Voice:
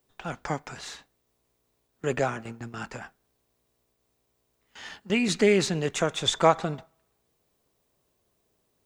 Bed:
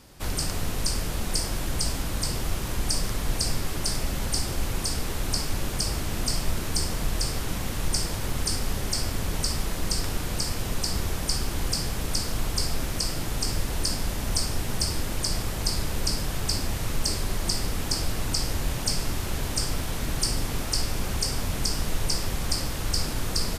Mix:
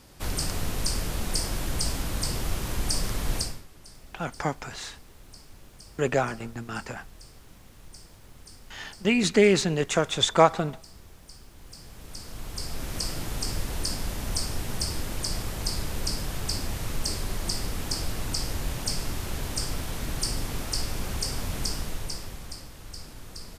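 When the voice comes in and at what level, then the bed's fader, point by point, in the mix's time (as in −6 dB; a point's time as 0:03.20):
3.95 s, +2.0 dB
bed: 0:03.39 −1 dB
0:03.67 −21.5 dB
0:11.54 −21.5 dB
0:13.00 −3 dB
0:21.68 −3 dB
0:22.69 −15 dB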